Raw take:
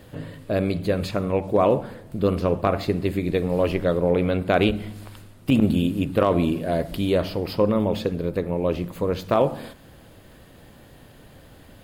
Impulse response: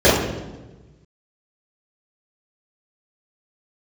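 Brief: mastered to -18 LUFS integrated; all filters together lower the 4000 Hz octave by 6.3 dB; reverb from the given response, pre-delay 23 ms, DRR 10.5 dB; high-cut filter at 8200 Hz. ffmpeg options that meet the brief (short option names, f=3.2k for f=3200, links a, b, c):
-filter_complex "[0:a]lowpass=8.2k,equalizer=f=4k:t=o:g=-8.5,asplit=2[a][b];[1:a]atrim=start_sample=2205,adelay=23[c];[b][c]afir=irnorm=-1:irlink=0,volume=-38dB[d];[a][d]amix=inputs=2:normalize=0,volume=4dB"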